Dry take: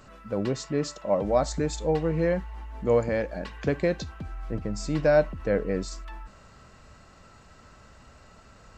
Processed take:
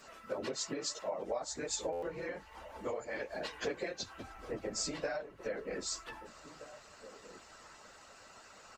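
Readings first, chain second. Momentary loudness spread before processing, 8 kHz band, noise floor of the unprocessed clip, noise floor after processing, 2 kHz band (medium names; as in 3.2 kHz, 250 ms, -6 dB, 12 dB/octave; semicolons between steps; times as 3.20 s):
14 LU, +1.5 dB, -53 dBFS, -57 dBFS, -7.5 dB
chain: phase randomisation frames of 50 ms; bass shelf 250 Hz -10.5 dB; compression 8:1, threshold -34 dBFS, peak gain reduction 19.5 dB; tone controls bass -9 dB, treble +4 dB; harmonic-percussive split percussive +7 dB; echo from a far wall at 270 m, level -14 dB; buffer glitch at 1.92 s, samples 512, times 8; trim -4 dB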